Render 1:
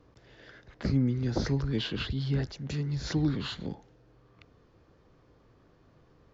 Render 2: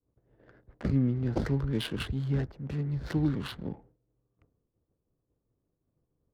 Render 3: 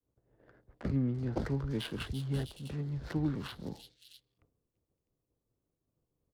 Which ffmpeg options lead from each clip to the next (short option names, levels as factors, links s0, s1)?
-af "agate=range=0.0224:threshold=0.00355:ratio=3:detection=peak,adynamicsmooth=sensitivity=8:basefreq=700"
-filter_complex "[0:a]acrossover=split=190|1100|3400[s0][s1][s2][s3];[s1]crystalizer=i=9.5:c=0[s4];[s3]aecho=1:1:55|139|337|347|563|653:0.188|0.106|0.562|0.501|0.473|0.596[s5];[s0][s4][s2][s5]amix=inputs=4:normalize=0,volume=0.562"